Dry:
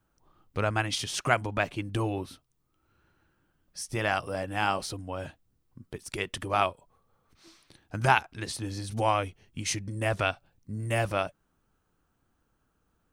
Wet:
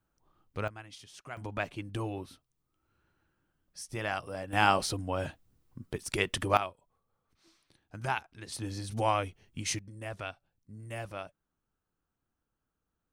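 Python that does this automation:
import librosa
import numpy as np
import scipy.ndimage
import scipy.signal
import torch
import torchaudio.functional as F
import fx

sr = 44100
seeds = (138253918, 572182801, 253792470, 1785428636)

y = fx.gain(x, sr, db=fx.steps((0.0, -6.0), (0.68, -19.0), (1.37, -6.0), (4.53, 3.0), (6.57, -10.0), (8.52, -2.5), (9.79, -12.0)))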